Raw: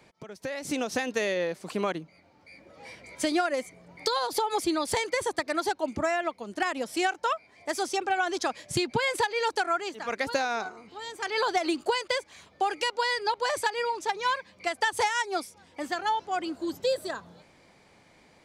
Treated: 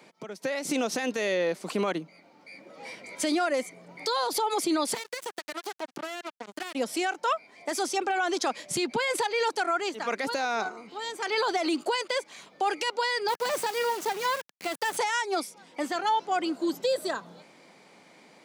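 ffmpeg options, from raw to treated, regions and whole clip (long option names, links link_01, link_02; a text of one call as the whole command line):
ffmpeg -i in.wav -filter_complex "[0:a]asettb=1/sr,asplit=3[link_01][link_02][link_03];[link_01]atrim=end=4.944[link_04];[link_02]atrim=start=4.94:end=6.75,asetpts=PTS-STARTPTS,afade=type=in:duration=0.004:curve=qsin,afade=type=out:start_time=1.806:duration=0.004:curve=qsin,lowshelf=frequency=130:gain=-11,acompressor=threshold=-38dB:ratio=4:attack=3.2:release=140:knee=1:detection=peak,acrusher=bits=5:mix=0:aa=0.5[link_05];[link_03]atrim=start=6.746[link_06];[link_04][link_05]acrossfade=duration=0.004:curve1=hsin:curve2=qsin[link_07];[link_07][link_06]acrossfade=duration=0.004:curve1=qsin:curve2=hsin,asettb=1/sr,asplit=3[link_08][link_09][link_10];[link_08]atrim=end=13.284[link_11];[link_09]atrim=start=13.28:end=14.97,asetpts=PTS-STARTPTS,afade=type=in:duration=0.004:curve=qsin,afade=type=out:start_time=1.686:duration=0.004:curve=qsin,aeval=exprs='if(lt(val(0),0),0.447*val(0),val(0))':channel_layout=same,lowshelf=frequency=220:gain=11,acrusher=bits=4:dc=4:mix=0:aa=0.000001[link_12];[link_10]atrim=start=14.966[link_13];[link_11][link_12]acrossfade=duration=0.004:curve1=hsin:curve2=qsin[link_14];[link_14][link_13]acrossfade=duration=0.004:curve1=qsin:curve2=hsin,highpass=frequency=170:width=0.5412,highpass=frequency=170:width=1.3066,bandreject=frequency=1700:width=21,alimiter=limit=-22.5dB:level=0:latency=1:release=13,volume=4dB" out.wav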